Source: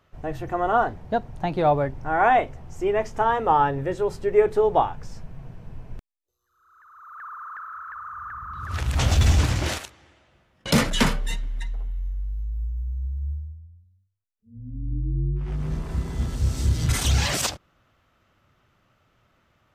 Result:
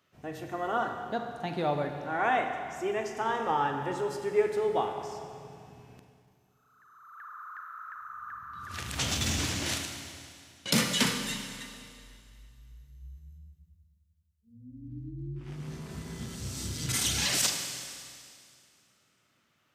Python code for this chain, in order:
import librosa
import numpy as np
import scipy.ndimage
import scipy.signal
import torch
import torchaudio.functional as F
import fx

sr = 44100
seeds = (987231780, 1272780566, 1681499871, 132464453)

y = scipy.signal.sosfilt(scipy.signal.butter(2, 220.0, 'highpass', fs=sr, output='sos'), x)
y = fx.peak_eq(y, sr, hz=720.0, db=-10.5, octaves=2.9)
y = fx.rev_schroeder(y, sr, rt60_s=2.3, comb_ms=32, drr_db=4.5)